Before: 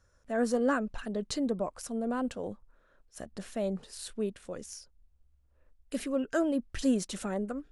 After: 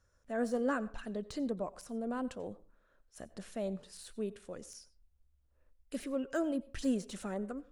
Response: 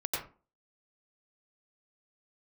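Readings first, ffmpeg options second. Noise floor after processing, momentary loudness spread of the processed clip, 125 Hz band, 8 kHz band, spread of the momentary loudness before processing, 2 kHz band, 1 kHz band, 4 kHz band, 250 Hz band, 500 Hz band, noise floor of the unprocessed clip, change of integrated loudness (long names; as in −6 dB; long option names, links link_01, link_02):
−72 dBFS, 14 LU, −5.0 dB, −8.0 dB, 14 LU, −5.0 dB, −5.0 dB, −7.5 dB, −5.0 dB, −5.0 dB, −67 dBFS, −5.0 dB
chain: -filter_complex "[0:a]deesser=0.95,asplit=2[link_01][link_02];[link_02]highshelf=frequency=4600:gain=7.5[link_03];[1:a]atrim=start_sample=2205[link_04];[link_03][link_04]afir=irnorm=-1:irlink=0,volume=-23dB[link_05];[link_01][link_05]amix=inputs=2:normalize=0,volume=-5.5dB"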